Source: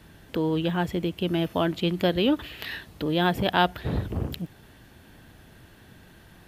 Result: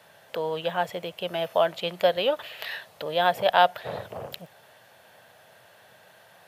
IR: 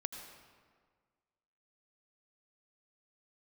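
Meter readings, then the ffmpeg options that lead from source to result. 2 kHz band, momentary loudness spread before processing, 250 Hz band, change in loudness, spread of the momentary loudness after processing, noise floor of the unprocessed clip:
+0.5 dB, 12 LU, -15.0 dB, 0.0 dB, 16 LU, -53 dBFS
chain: -af "highpass=f=110:w=0.5412,highpass=f=110:w=1.3066,lowshelf=f=420:t=q:w=3:g=-11"

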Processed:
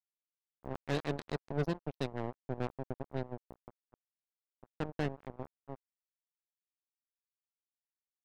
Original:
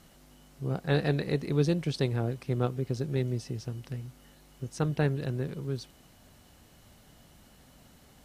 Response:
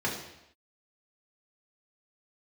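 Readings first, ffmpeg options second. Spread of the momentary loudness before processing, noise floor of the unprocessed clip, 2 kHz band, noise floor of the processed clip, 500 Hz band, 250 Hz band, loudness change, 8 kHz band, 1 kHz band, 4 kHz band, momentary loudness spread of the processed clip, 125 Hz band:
13 LU, -58 dBFS, -7.0 dB, under -85 dBFS, -8.0 dB, -9.0 dB, -8.5 dB, under -10 dB, -3.0 dB, -8.5 dB, 16 LU, -12.5 dB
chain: -af "afftfilt=real='re*gte(hypot(re,im),0.0178)':imag='im*gte(hypot(re,im),0.0178)':win_size=1024:overlap=0.75,asoftclip=type=tanh:threshold=-20dB,acrusher=bits=3:mix=0:aa=0.5,volume=-4.5dB"

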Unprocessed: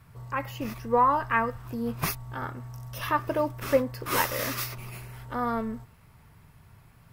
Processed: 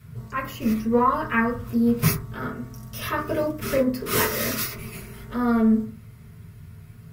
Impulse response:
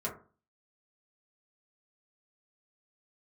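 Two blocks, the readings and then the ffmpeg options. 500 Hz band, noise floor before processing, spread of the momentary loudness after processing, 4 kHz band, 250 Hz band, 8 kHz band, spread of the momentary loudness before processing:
+3.5 dB, -56 dBFS, 13 LU, +4.5 dB, +11.5 dB, +6.0 dB, 15 LU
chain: -filter_complex "[0:a]equalizer=f=850:w=0.72:g=-13.5[a];[1:a]atrim=start_sample=2205[b];[a][b]afir=irnorm=-1:irlink=0,volume=7dB"

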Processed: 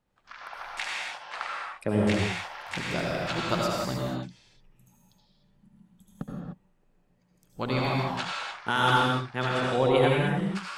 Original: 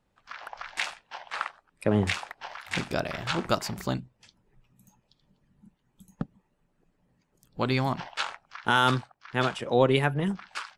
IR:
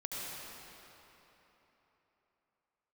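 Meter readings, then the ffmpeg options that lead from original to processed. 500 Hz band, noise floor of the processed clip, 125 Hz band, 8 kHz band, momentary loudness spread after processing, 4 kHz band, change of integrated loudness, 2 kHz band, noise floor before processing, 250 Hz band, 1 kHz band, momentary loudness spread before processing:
+1.0 dB, -67 dBFS, +1.0 dB, 0.0 dB, 17 LU, +0.5 dB, +1.0 dB, +0.5 dB, -73 dBFS, +1.0 dB, +1.5 dB, 17 LU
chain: -filter_complex "[1:a]atrim=start_sample=2205,afade=t=out:st=0.36:d=0.01,atrim=end_sample=16317[a];[0:a][a]afir=irnorm=-1:irlink=0"

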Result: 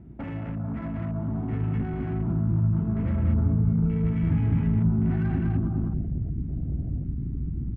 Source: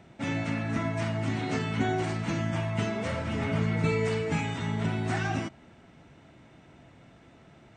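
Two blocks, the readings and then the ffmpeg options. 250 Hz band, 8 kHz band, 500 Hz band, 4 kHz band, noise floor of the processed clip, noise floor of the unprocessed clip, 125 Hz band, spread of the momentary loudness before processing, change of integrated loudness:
+5.0 dB, under -35 dB, -6.5 dB, under -20 dB, -33 dBFS, -56 dBFS, +7.5 dB, 5 LU, +3.0 dB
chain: -af "aecho=1:1:205|410|615|820:0.668|0.227|0.0773|0.0263,acompressor=threshold=-39dB:ratio=10,bandreject=f=60:t=h:w=6,bandreject=f=120:t=h:w=6,bandreject=f=180:t=h:w=6,asubboost=boost=2.5:cutoff=73,aeval=exprs='0.015*(abs(mod(val(0)/0.015+3,4)-2)-1)':c=same,aeval=exprs='val(0)+0.00112*(sin(2*PI*60*n/s)+sin(2*PI*2*60*n/s)/2+sin(2*PI*3*60*n/s)/3+sin(2*PI*4*60*n/s)/4+sin(2*PI*5*60*n/s)/5)':c=same,aresample=8000,aresample=44100,afwtdn=0.00447,adynamicsmooth=sensitivity=2.5:basefreq=1.7k,asubboost=boost=10:cutoff=200,volume=8.5dB"

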